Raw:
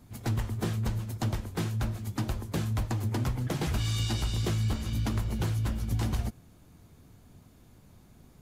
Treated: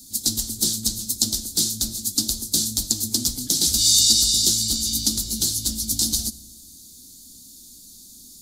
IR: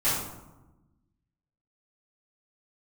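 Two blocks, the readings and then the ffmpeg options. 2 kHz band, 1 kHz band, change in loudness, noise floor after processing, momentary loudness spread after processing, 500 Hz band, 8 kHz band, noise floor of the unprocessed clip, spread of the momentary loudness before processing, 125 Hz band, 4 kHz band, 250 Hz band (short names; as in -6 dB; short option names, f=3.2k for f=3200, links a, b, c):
n/a, under -10 dB, +12.0 dB, -46 dBFS, 8 LU, -4.0 dB, +26.0 dB, -57 dBFS, 4 LU, -8.5 dB, +20.0 dB, +2.5 dB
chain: -filter_complex "[0:a]aexciter=amount=8.1:drive=7.3:freq=4k,equalizer=f=125:t=o:w=1:g=-12,equalizer=f=250:t=o:w=1:g=11,equalizer=f=500:t=o:w=1:g=-6,equalizer=f=1k:t=o:w=1:g=-11,equalizer=f=2k:t=o:w=1:g=-9,equalizer=f=4k:t=o:w=1:g=11,equalizer=f=8k:t=o:w=1:g=4,asplit=2[a][b];[1:a]atrim=start_sample=2205,afade=t=out:st=0.35:d=0.01,atrim=end_sample=15876,asetrate=26901,aresample=44100[c];[b][c]afir=irnorm=-1:irlink=0,volume=-33.5dB[d];[a][d]amix=inputs=2:normalize=0,volume=-1.5dB"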